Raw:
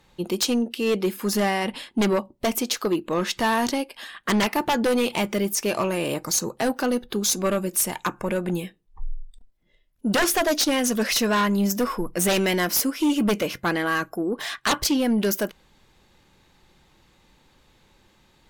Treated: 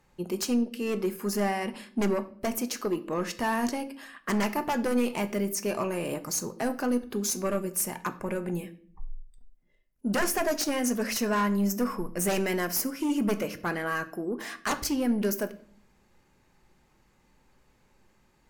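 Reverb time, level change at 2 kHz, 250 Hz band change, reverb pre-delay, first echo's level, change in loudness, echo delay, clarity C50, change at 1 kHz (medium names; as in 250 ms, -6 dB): 0.50 s, -6.5 dB, -4.5 dB, 5 ms, no echo, -5.5 dB, no echo, 16.5 dB, -5.5 dB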